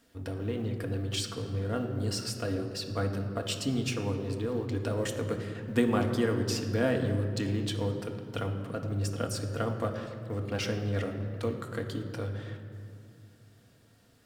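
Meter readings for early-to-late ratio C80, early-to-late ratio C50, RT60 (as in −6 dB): 8.0 dB, 7.0 dB, 2.4 s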